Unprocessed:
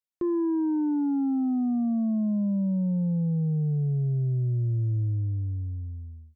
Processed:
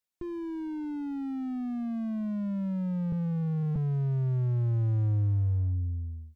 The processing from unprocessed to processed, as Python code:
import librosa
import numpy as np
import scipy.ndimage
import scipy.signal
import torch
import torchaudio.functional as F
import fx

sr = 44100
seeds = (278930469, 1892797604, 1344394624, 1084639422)

y = fx.sine_speech(x, sr, at=(3.12, 3.76))
y = fx.slew_limit(y, sr, full_power_hz=4.0)
y = y * librosa.db_to_amplitude(4.0)